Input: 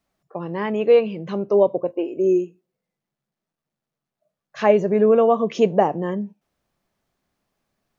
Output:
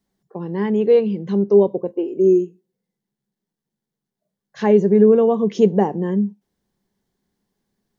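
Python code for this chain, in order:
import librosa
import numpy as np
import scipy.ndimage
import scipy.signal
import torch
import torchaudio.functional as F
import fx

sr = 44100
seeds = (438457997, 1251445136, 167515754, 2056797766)

y = fx.graphic_eq_31(x, sr, hz=(200, 400, 630, 1250, 2500), db=(9, 6, -10, -11, -10))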